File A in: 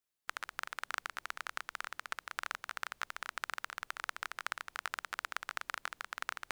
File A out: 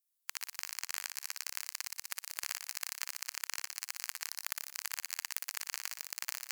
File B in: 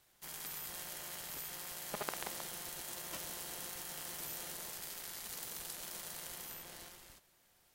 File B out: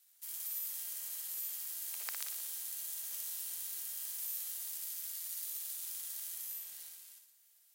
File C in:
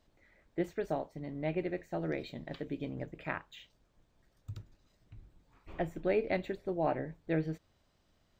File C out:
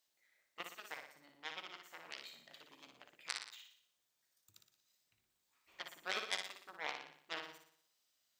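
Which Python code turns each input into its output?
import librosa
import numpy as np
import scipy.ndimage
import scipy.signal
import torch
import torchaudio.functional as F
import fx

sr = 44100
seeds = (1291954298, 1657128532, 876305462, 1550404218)

y = fx.cheby_harmonics(x, sr, harmonics=(3, 5, 7, 8), levels_db=(-18, -10, -8, -31), full_scale_db=-14.5)
y = np.diff(y, prepend=0.0)
y = fx.room_flutter(y, sr, wall_m=10.1, rt60_s=0.61)
y = y * 10.0 ** (6.5 / 20.0)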